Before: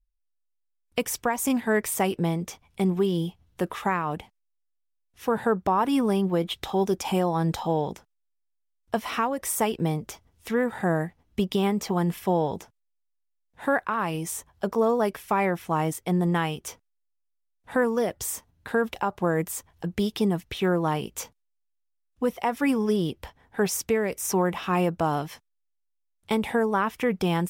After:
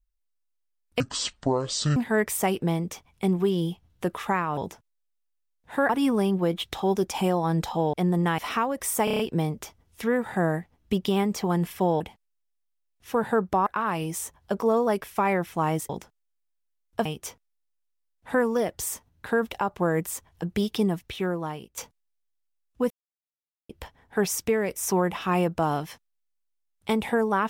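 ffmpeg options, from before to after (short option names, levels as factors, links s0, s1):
-filter_complex "[0:a]asplit=19[s0][s1][s2][s3][s4][s5][s6][s7][s8][s9][s10][s11][s12][s13][s14][s15][s16][s17][s18];[s0]atrim=end=1.004[s19];[s1]atrim=start=1:end=1.53,asetpts=PTS-STARTPTS,asetrate=24255,aresample=44100,atrim=end_sample=42496,asetpts=PTS-STARTPTS[s20];[s2]atrim=start=1.526:end=4.142[s21];[s3]atrim=start=12.468:end=13.792[s22];[s4]atrim=start=5.798:end=7.842[s23];[s5]atrim=start=16.018:end=16.472[s24];[s6]atrim=start=8.998:end=9.692[s25];[s7]atrim=start=9.658:end=9.692[s26];[s8]atrim=start=9.658:end=9.692[s27];[s9]atrim=start=9.658:end=9.692[s28];[s10]atrim=start=9.658:end=9.692[s29];[s11]atrim=start=9.658:end=12.472[s30];[s12]atrim=start=4.138:end=5.802[s31];[s13]atrim=start=13.788:end=16.022[s32];[s14]atrim=start=7.838:end=9.002[s33];[s15]atrim=start=16.468:end=21.19,asetpts=PTS-STARTPTS,afade=t=out:st=3.762:d=0.96:silence=0.188365[s34];[s16]atrim=start=21.19:end=22.32,asetpts=PTS-STARTPTS,afade=t=in:d=0.004:c=hsin:silence=0.188365,afade=t=out:st=1.126:d=0.004:c=hsin[s35];[s17]atrim=start=22.32:end=23.11,asetpts=PTS-STARTPTS,volume=0[s36];[s18]atrim=start=23.11,asetpts=PTS-STARTPTS,afade=t=in:d=0.004:c=hsin[s37];[s19][s20]acrossfade=d=0.004:c1=hsin:c2=hsin[s38];[s38][s21]acrossfade=d=0.004:c1=hsin:c2=hsin[s39];[s39][s22]acrossfade=d=0.004:c1=hsin:c2=hsin[s40];[s40][s23]acrossfade=d=0.004:c1=hsin:c2=hsin[s41];[s41][s24]acrossfade=d=0.004:c1=hsin:c2=hsin[s42];[s42][s25]acrossfade=d=0.004:c1=hsin:c2=hsin[s43];[s43][s26]acrossfade=d=0.004:c1=hsin:c2=hsin[s44];[s44][s27]acrossfade=d=0.004:c1=hsin:c2=hsin[s45];[s45][s28]acrossfade=d=0.004:c1=hsin:c2=hsin[s46];[s46][s29]acrossfade=d=0.004:c1=hsin:c2=hsin[s47];[s47][s30]acrossfade=d=0.004:c1=hsin:c2=hsin[s48];[s48][s31]acrossfade=d=0.004:c1=hsin:c2=hsin[s49];[s49][s32]acrossfade=d=0.004:c1=hsin:c2=hsin[s50];[s50][s33]acrossfade=d=0.004:c1=hsin:c2=hsin[s51];[s34][s35][s36][s37]concat=n=4:v=0:a=1[s52];[s51][s52]acrossfade=d=0.004:c1=hsin:c2=hsin"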